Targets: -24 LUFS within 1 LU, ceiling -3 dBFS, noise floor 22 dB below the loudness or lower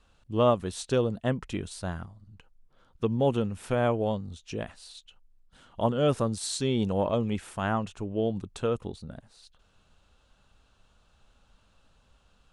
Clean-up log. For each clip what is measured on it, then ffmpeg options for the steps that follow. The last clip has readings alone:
loudness -29.0 LUFS; peak level -11.5 dBFS; loudness target -24.0 LUFS
-> -af "volume=1.78"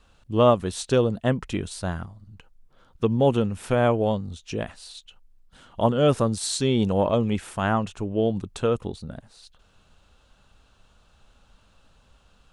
loudness -24.0 LUFS; peak level -6.5 dBFS; noise floor -60 dBFS

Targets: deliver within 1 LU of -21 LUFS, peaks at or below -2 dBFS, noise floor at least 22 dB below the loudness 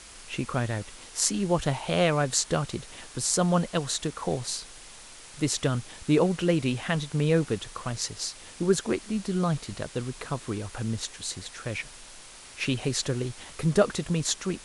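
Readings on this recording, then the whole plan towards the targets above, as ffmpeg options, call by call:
noise floor -47 dBFS; noise floor target -50 dBFS; loudness -28.0 LUFS; peak level -6.5 dBFS; loudness target -21.0 LUFS
-> -af "afftdn=nr=6:nf=-47"
-af "volume=2.24,alimiter=limit=0.794:level=0:latency=1"

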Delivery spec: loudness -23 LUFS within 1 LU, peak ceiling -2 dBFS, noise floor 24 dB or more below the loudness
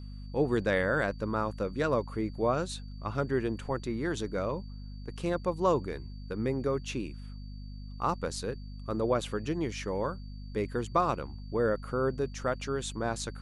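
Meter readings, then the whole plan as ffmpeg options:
hum 50 Hz; highest harmonic 250 Hz; hum level -40 dBFS; steady tone 4.6 kHz; tone level -59 dBFS; loudness -32.0 LUFS; peak level -13.0 dBFS; loudness target -23.0 LUFS
-> -af "bandreject=f=50:t=h:w=4,bandreject=f=100:t=h:w=4,bandreject=f=150:t=h:w=4,bandreject=f=200:t=h:w=4,bandreject=f=250:t=h:w=4"
-af "bandreject=f=4600:w=30"
-af "volume=2.82"

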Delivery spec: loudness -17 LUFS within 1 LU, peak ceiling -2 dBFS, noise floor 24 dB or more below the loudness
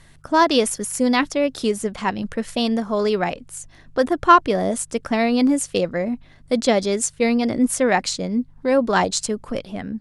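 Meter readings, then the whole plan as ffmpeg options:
hum 50 Hz; highest harmonic 150 Hz; hum level -52 dBFS; loudness -20.5 LUFS; peak level -1.5 dBFS; loudness target -17.0 LUFS
-> -af "bandreject=f=50:t=h:w=4,bandreject=f=100:t=h:w=4,bandreject=f=150:t=h:w=4"
-af "volume=1.5,alimiter=limit=0.794:level=0:latency=1"

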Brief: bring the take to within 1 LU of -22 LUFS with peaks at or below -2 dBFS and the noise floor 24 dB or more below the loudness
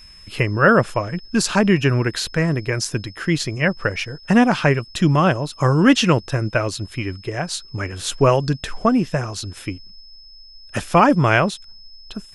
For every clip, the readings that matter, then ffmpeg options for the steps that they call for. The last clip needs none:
steady tone 5.2 kHz; tone level -43 dBFS; loudness -19.0 LUFS; peak level -1.5 dBFS; loudness target -22.0 LUFS
-> -af "bandreject=f=5200:w=30"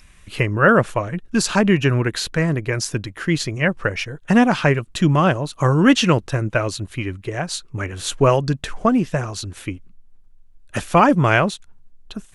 steady tone not found; loudness -19.0 LUFS; peak level -1.5 dBFS; loudness target -22.0 LUFS
-> -af "volume=0.708"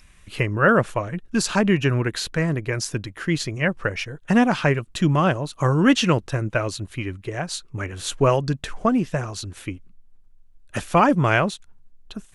loudness -22.0 LUFS; peak level -4.5 dBFS; noise floor -51 dBFS

